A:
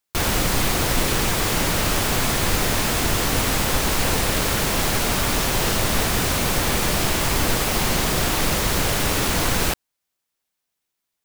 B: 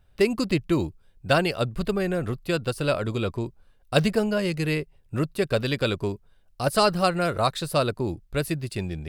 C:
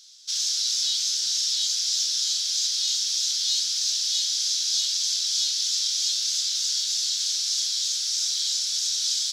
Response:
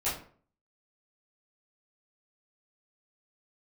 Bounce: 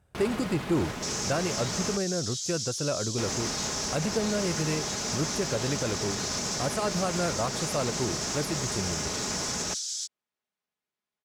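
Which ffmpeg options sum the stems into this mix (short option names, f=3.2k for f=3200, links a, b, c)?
-filter_complex "[0:a]aecho=1:1:4.8:0.34,alimiter=limit=-18dB:level=0:latency=1:release=60,volume=-4.5dB,asplit=3[a][b][c];[a]atrim=end=1.97,asetpts=PTS-STARTPTS,afade=t=out:st=1.966:d=0.004:c=hsin[d];[b]atrim=start=1.97:end=3.18,asetpts=PTS-STARTPTS,volume=0[e];[c]atrim=start=3.18,asetpts=PTS-STARTPTS,afade=t=in:d=0.004:c=hsin[f];[d][e][f]concat=n=3:v=0:a=1[g];[1:a]volume=0.5dB[h];[2:a]alimiter=limit=-22.5dB:level=0:latency=1:release=92,adelay=750,volume=3dB[i];[h][i]amix=inputs=2:normalize=0,highshelf=f=5.4k:t=q:w=1.5:g=12.5,alimiter=limit=-14dB:level=0:latency=1:release=231,volume=0dB[j];[g][j]amix=inputs=2:normalize=0,highpass=83,aemphasis=mode=reproduction:type=75fm,asoftclip=type=tanh:threshold=-17dB"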